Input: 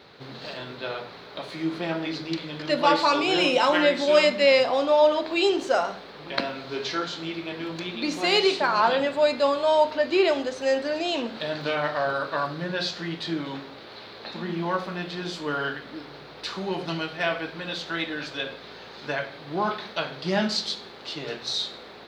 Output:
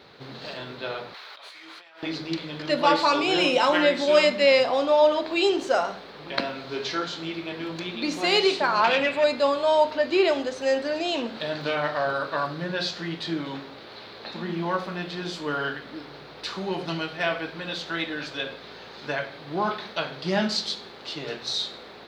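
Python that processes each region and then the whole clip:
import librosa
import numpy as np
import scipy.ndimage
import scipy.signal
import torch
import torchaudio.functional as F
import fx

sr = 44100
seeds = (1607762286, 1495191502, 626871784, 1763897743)

y = fx.chain(x, sr, fx.highpass(hz=1100.0, slope=12),
    fx.over_compress(threshold_db=-46.0, ratio=-1.0), at=(1.14, 2.03))
y = fx.chain(y, sr, fx.peak_eq(hz=2400.0, db=14.5, octaves=0.58),
    fx.transformer_sat(knee_hz=1400.0), at=(8.84, 9.24))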